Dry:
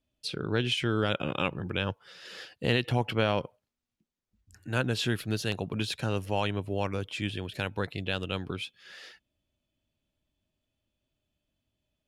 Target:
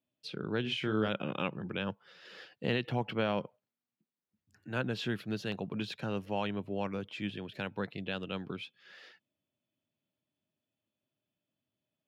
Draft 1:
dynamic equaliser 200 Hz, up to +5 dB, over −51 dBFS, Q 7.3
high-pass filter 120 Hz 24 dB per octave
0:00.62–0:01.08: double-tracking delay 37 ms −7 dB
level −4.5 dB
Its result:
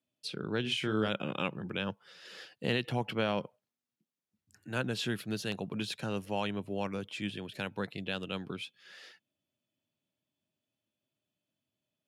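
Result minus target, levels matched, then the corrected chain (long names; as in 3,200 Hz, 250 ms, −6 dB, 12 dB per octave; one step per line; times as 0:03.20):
8,000 Hz band +9.5 dB
dynamic equaliser 200 Hz, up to +5 dB, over −51 dBFS, Q 7.3
high-pass filter 120 Hz 24 dB per octave
parametric band 9,500 Hz −14.5 dB 1.3 octaves
0:00.62–0:01.08: double-tracking delay 37 ms −7 dB
level −4.5 dB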